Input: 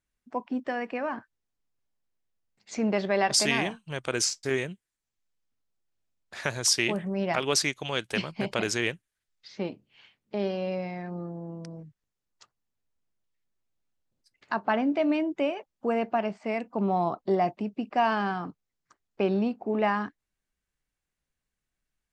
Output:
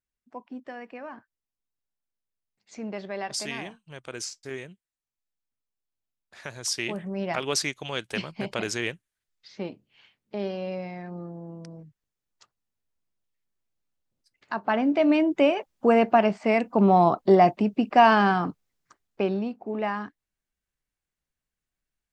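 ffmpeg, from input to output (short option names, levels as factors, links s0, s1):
-af "volume=2.51,afade=t=in:st=6.48:d=0.69:silence=0.446684,afade=t=in:st=14.53:d=1.05:silence=0.334965,afade=t=out:st=18.48:d=0.94:silence=0.281838"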